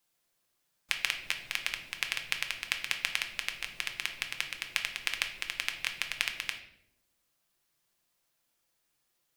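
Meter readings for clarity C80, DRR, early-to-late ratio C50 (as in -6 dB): 12.5 dB, 4.0 dB, 10.0 dB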